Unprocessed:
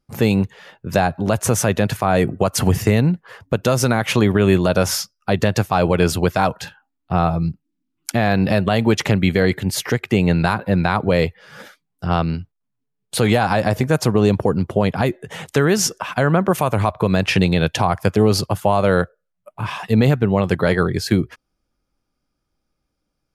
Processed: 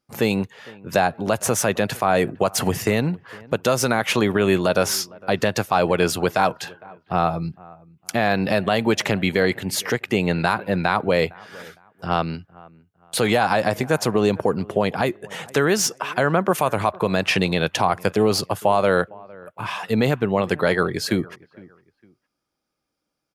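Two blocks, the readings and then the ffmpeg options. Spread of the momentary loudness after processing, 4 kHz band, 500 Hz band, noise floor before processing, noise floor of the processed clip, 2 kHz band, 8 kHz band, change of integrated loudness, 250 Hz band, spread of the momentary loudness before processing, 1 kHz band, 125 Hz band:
11 LU, -0.5 dB, -1.5 dB, -76 dBFS, -79 dBFS, 0.0 dB, -1.0 dB, -3.0 dB, -5.0 dB, 8 LU, -0.5 dB, -8.5 dB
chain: -filter_complex "[0:a]highpass=f=320:p=1,acrossover=split=2700[a][b];[a]aecho=1:1:458|916:0.0708|0.0212[c];[b]asoftclip=type=tanh:threshold=-14dB[d];[c][d]amix=inputs=2:normalize=0"

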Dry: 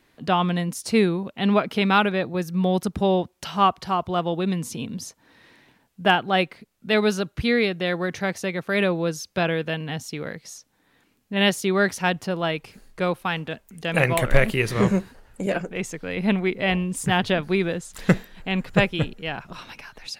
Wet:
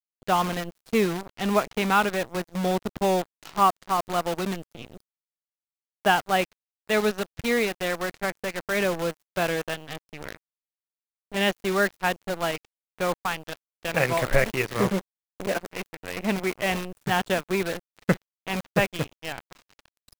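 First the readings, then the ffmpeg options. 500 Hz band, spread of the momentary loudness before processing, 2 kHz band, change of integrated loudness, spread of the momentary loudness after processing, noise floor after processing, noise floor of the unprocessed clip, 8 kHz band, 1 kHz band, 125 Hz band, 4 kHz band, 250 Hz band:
-2.5 dB, 11 LU, -2.5 dB, -3.0 dB, 12 LU, under -85 dBFS, -65 dBFS, -1.5 dB, -1.0 dB, -6.5 dB, -4.0 dB, -5.5 dB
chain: -filter_complex "[0:a]asplit=2[a][b];[b]highpass=f=720:p=1,volume=7dB,asoftclip=type=tanh:threshold=-4dB[c];[a][c]amix=inputs=2:normalize=0,lowpass=f=1.4k:p=1,volume=-6dB,aeval=exprs='sgn(val(0))*max(abs(val(0))-0.0158,0)':c=same,acrusher=bits=6:dc=4:mix=0:aa=0.000001"

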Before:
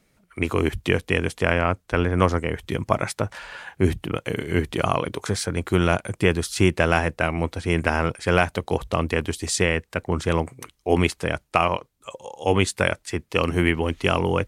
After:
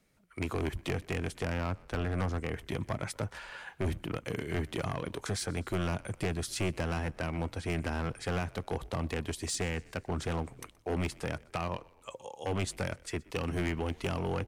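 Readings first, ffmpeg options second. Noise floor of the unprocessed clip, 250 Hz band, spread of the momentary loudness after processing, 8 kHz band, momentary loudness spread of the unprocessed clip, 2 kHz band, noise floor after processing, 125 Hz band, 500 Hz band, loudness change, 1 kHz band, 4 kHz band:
-66 dBFS, -11.5 dB, 6 LU, -9.0 dB, 8 LU, -14.0 dB, -61 dBFS, -9.5 dB, -13.0 dB, -12.0 dB, -13.5 dB, -11.5 dB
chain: -filter_complex "[0:a]acrossover=split=300[a][b];[b]acompressor=threshold=-24dB:ratio=4[c];[a][c]amix=inputs=2:normalize=0,volume=20dB,asoftclip=hard,volume=-20dB,asplit=5[d][e][f][g][h];[e]adelay=124,afreqshift=-48,volume=-23.5dB[i];[f]adelay=248,afreqshift=-96,volume=-28.7dB[j];[g]adelay=372,afreqshift=-144,volume=-33.9dB[k];[h]adelay=496,afreqshift=-192,volume=-39.1dB[l];[d][i][j][k][l]amix=inputs=5:normalize=0,volume=-7dB"

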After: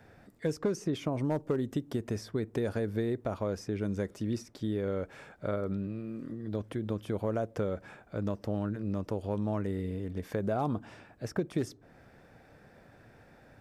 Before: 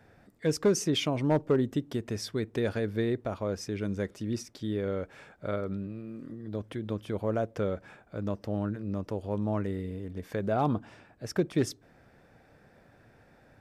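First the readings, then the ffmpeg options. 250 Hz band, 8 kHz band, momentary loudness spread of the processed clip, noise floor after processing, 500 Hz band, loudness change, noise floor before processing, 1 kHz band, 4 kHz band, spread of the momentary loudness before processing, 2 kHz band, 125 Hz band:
-2.0 dB, -10.0 dB, 6 LU, -59 dBFS, -2.5 dB, -2.5 dB, -61 dBFS, -3.0 dB, -10.5 dB, 11 LU, -4.0 dB, -1.5 dB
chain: -filter_complex "[0:a]acrossover=split=1600|5800[a][b][c];[a]acompressor=threshold=-30dB:ratio=4[d];[b]acompressor=threshold=-56dB:ratio=4[e];[c]acompressor=threshold=-56dB:ratio=4[f];[d][e][f]amix=inputs=3:normalize=0,volume=2dB"

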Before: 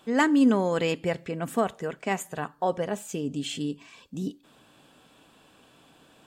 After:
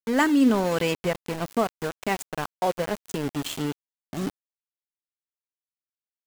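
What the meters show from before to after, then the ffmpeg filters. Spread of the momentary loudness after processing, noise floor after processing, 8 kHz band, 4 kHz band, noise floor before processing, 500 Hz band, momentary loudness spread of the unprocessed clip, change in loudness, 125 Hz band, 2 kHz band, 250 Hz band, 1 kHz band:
13 LU, under -85 dBFS, +1.5 dB, +2.5 dB, -59 dBFS, +1.0 dB, 14 LU, +1.0 dB, +1.5 dB, +2.0 dB, +1.0 dB, +1.5 dB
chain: -filter_complex "[0:a]asplit=2[a][b];[b]acompressor=threshold=-38dB:ratio=8,volume=1dB[c];[a][c]amix=inputs=2:normalize=0,aeval=exprs='val(0)*gte(abs(val(0)),0.0376)':c=same"

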